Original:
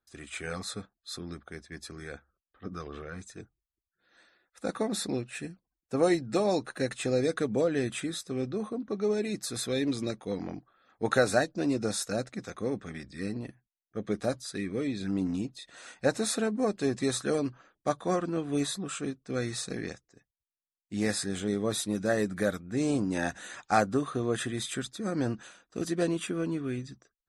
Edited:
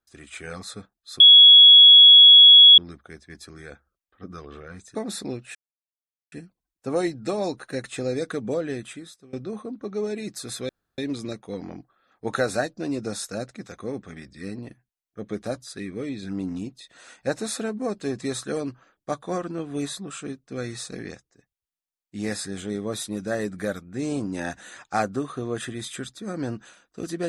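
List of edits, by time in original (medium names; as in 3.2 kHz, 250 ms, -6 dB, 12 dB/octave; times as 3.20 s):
1.20 s: add tone 3.35 kHz -6.5 dBFS 1.58 s
3.37–4.79 s: delete
5.39 s: insert silence 0.77 s
7.67–8.40 s: fade out, to -22 dB
9.76 s: insert room tone 0.29 s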